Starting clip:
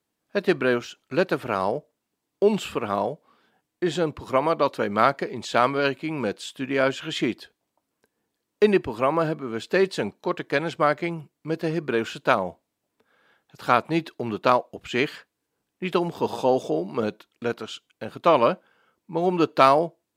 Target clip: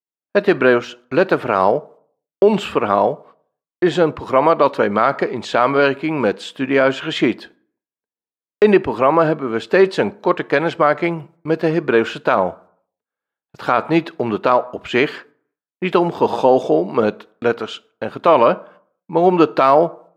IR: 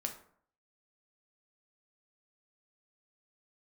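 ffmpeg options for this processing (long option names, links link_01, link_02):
-filter_complex "[0:a]agate=range=-34dB:threshold=-51dB:ratio=16:detection=peak,lowpass=frequency=1500:poles=1,lowshelf=frequency=310:gain=-9,asplit=2[link_01][link_02];[1:a]atrim=start_sample=2205[link_03];[link_02][link_03]afir=irnorm=-1:irlink=0,volume=-14dB[link_04];[link_01][link_04]amix=inputs=2:normalize=0,alimiter=level_in=13dB:limit=-1dB:release=50:level=0:latency=1,volume=-1dB"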